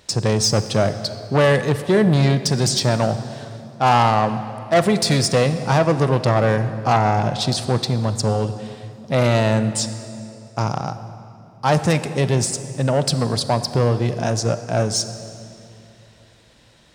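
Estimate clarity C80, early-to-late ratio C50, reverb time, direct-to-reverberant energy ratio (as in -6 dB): 12.0 dB, 11.5 dB, 2.8 s, 11.0 dB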